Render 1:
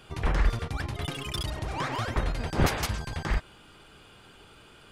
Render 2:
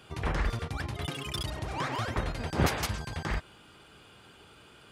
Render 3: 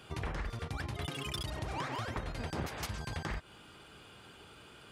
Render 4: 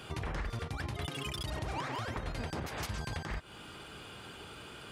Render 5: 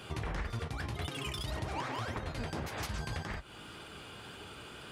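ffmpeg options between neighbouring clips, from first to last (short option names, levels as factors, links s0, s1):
-af "highpass=57,volume=0.841"
-af "acompressor=threshold=0.02:ratio=10"
-af "alimiter=level_in=3.16:limit=0.0631:level=0:latency=1:release=263,volume=0.316,volume=2.11"
-af "flanger=delay=9.3:depth=9.9:regen=-47:speed=1.8:shape=sinusoidal,volume=1.58"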